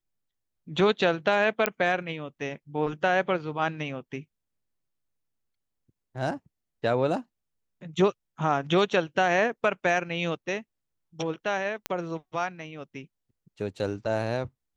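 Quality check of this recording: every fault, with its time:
1.66 pop -7 dBFS
11.86 pop -12 dBFS

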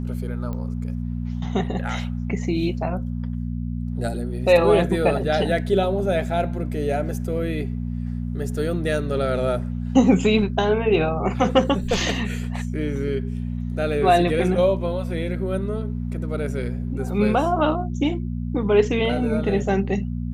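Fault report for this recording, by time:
hum 60 Hz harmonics 4 -27 dBFS
0.53 pop -20 dBFS

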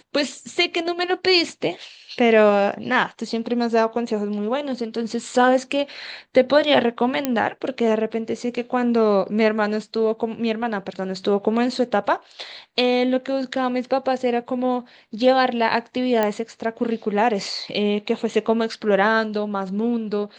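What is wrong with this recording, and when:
7.25 pop -6 dBFS
16.23 pop -8 dBFS

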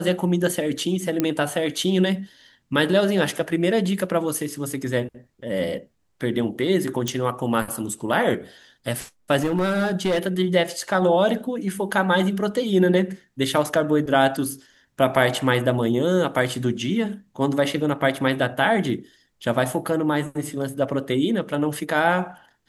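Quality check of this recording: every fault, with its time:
1.2 pop -7 dBFS
7.08 pop
9.37–10.19 clipped -17 dBFS

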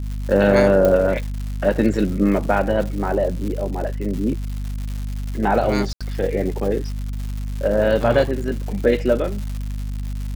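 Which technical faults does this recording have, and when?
crackle 240/s -28 dBFS
hum 50 Hz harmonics 5 -26 dBFS
0.85 pop -7 dBFS
5.93–6.01 gap 76 ms

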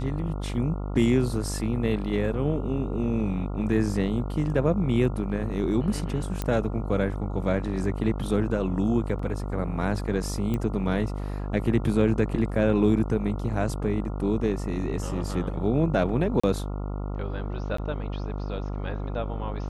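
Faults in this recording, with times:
buzz 50 Hz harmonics 28 -31 dBFS
6.42 pop -14 dBFS
9.19 gap 4.3 ms
10.54 pop -17 dBFS
16.4–16.43 gap 35 ms
17.77–17.78 gap 14 ms

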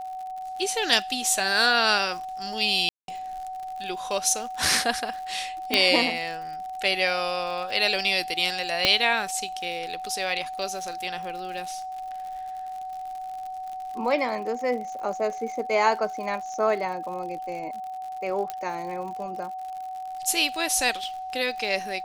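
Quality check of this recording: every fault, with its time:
crackle 86/s -35 dBFS
tone 750 Hz -32 dBFS
2.89–3.08 gap 0.192 s
5.74 pop -6 dBFS
8.85 pop -5 dBFS
18.5 pop -16 dBFS

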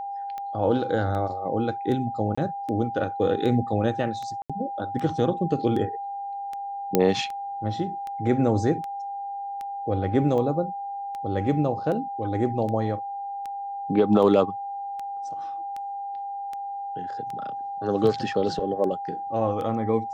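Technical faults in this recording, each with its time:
tick 78 rpm -22 dBFS
tone 800 Hz -30 dBFS
2.35–2.38 gap 25 ms
4.42–4.5 gap 76 ms
6.95 pop -5 dBFS

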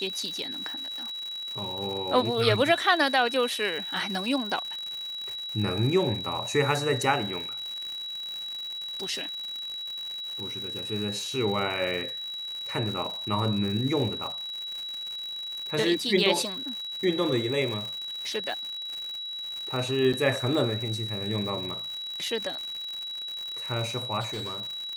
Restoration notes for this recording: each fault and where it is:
crackle 170/s -33 dBFS
tone 3900 Hz -33 dBFS
20.13–20.14 gap 6.1 ms
24.2–24.61 clipped -29.5 dBFS

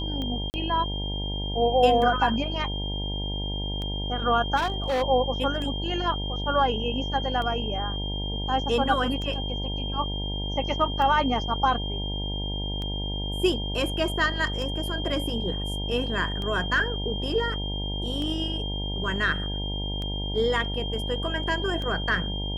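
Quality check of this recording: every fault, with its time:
buzz 50 Hz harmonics 19 -31 dBFS
tick 33 1/3 rpm -21 dBFS
tone 3200 Hz -33 dBFS
0.5–0.54 gap 39 ms
4.56–5.03 clipped -22 dBFS

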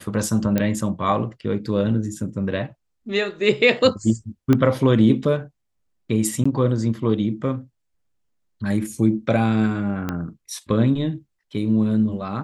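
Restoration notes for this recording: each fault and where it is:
0.58 pop -8 dBFS
4.53 pop -7 dBFS
6.44–6.46 gap 15 ms
10.09 pop -12 dBFS

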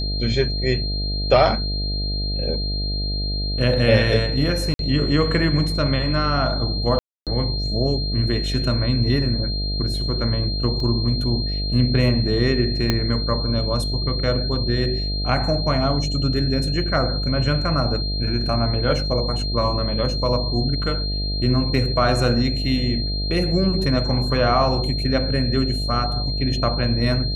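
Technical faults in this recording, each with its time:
buzz 50 Hz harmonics 14 -25 dBFS
tone 4200 Hz -27 dBFS
4.74–4.79 gap 52 ms
6.99–7.27 gap 0.277 s
10.8 gap 2.2 ms
12.9 pop -5 dBFS

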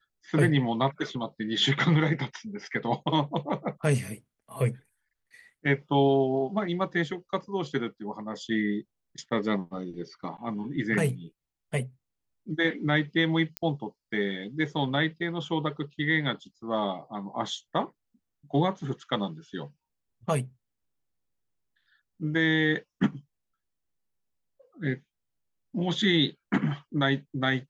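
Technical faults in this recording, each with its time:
13.57 pop -14 dBFS

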